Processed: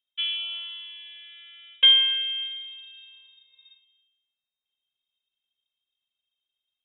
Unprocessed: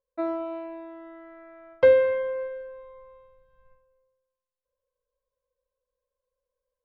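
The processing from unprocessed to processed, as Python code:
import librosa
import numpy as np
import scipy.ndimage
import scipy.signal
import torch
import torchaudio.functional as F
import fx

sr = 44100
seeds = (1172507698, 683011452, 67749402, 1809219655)

y = fx.freq_invert(x, sr, carrier_hz=3700)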